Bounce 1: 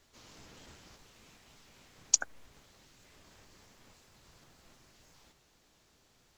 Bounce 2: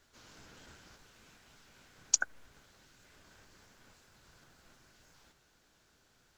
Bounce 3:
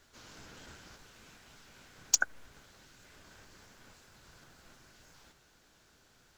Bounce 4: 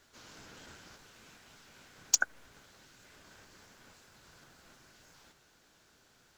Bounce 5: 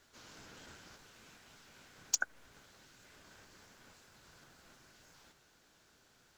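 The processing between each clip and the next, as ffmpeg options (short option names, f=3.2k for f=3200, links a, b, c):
-af "equalizer=f=1.5k:t=o:w=0.25:g=9,volume=-2dB"
-af "volume=16.5dB,asoftclip=hard,volume=-16.5dB,volume=4dB"
-af "lowshelf=f=74:g=-8"
-af "alimiter=limit=-16.5dB:level=0:latency=1:release=329,volume=-2dB"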